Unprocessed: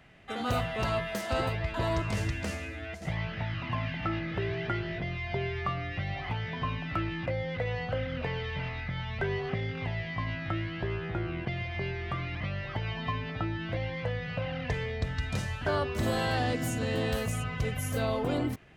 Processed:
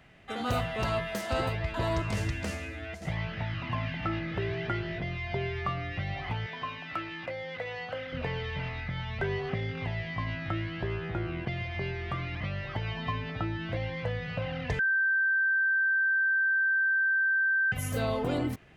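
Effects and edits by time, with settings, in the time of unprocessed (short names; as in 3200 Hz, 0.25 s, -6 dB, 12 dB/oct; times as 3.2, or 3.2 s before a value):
6.46–8.13 HPF 600 Hz 6 dB/oct
14.79–17.72 bleep 1560 Hz -23 dBFS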